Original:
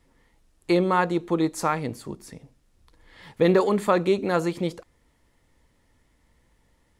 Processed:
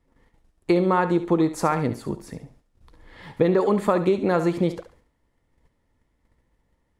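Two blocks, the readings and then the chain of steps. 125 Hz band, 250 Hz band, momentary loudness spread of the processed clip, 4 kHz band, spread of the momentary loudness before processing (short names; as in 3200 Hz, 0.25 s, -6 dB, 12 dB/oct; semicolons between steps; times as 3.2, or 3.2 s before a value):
+3.0 dB, +2.5 dB, 16 LU, -3.5 dB, 12 LU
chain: gate -60 dBFS, range -11 dB; high shelf 2100 Hz -9 dB; compressor 10:1, threshold -22 dBFS, peak gain reduction 8 dB; on a send: thinning echo 70 ms, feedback 32%, high-pass 420 Hz, level -11 dB; on the sum: gain +6.5 dB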